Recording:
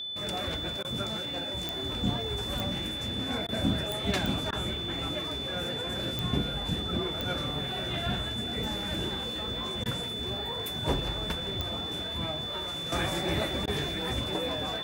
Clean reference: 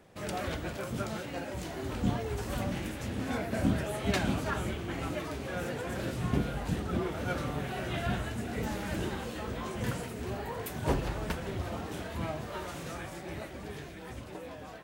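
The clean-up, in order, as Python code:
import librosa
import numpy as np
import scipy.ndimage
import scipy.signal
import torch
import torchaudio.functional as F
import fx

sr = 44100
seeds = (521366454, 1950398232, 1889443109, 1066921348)

y = fx.fix_declick_ar(x, sr, threshold=10.0)
y = fx.notch(y, sr, hz=3500.0, q=30.0)
y = fx.fix_interpolate(y, sr, at_s=(0.83, 3.47, 4.51, 9.84, 13.66), length_ms=15.0)
y = fx.fix_level(y, sr, at_s=12.92, step_db=-10.5)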